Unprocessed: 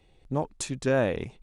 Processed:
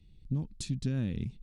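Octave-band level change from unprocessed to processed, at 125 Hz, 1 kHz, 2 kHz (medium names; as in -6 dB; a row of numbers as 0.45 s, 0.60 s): +1.5 dB, under -20 dB, -17.5 dB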